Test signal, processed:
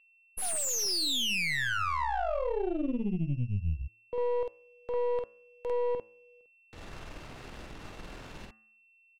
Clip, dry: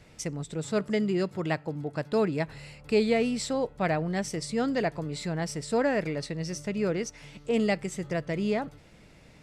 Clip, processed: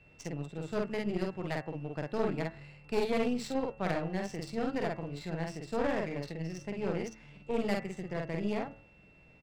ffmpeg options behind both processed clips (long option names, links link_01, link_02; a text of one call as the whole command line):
ffmpeg -i in.wav -filter_complex "[0:a]acrossover=split=350|1400[link_01][link_02][link_03];[link_03]crystalizer=i=0.5:c=0[link_04];[link_01][link_02][link_04]amix=inputs=3:normalize=0,asplit=2[link_05][link_06];[link_06]adelay=49,volume=-2dB[link_07];[link_05][link_07]amix=inputs=2:normalize=0,aeval=exprs='val(0)+0.00398*sin(2*PI*2700*n/s)':channel_layout=same,aeval=exprs='(tanh(8.91*val(0)+0.8)-tanh(0.8))/8.91':channel_layout=same,adynamicsmooth=sensitivity=7.5:basefreq=2700,bandreject=frequency=110:width_type=h:width=4,bandreject=frequency=220:width_type=h:width=4,bandreject=frequency=330:width_type=h:width=4,bandreject=frequency=440:width_type=h:width=4,bandreject=frequency=550:width_type=h:width=4,bandreject=frequency=660:width_type=h:width=4,bandreject=frequency=770:width_type=h:width=4,bandreject=frequency=880:width_type=h:width=4,bandreject=frequency=990:width_type=h:width=4,bandreject=frequency=1100:width_type=h:width=4,bandreject=frequency=1210:width_type=h:width=4,bandreject=frequency=1320:width_type=h:width=4,bandreject=frequency=1430:width_type=h:width=4,bandreject=frequency=1540:width_type=h:width=4,bandreject=frequency=1650:width_type=h:width=4,bandreject=frequency=1760:width_type=h:width=4,bandreject=frequency=1870:width_type=h:width=4,bandreject=frequency=1980:width_type=h:width=4,bandreject=frequency=2090:width_type=h:width=4,bandreject=frequency=2200:width_type=h:width=4,volume=-3.5dB" out.wav